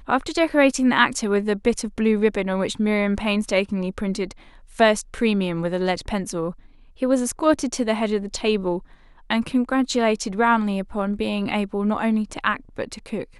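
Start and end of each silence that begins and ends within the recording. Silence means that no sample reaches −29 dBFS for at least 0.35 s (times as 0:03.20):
0:04.32–0:04.79
0:06.51–0:07.02
0:08.79–0:09.30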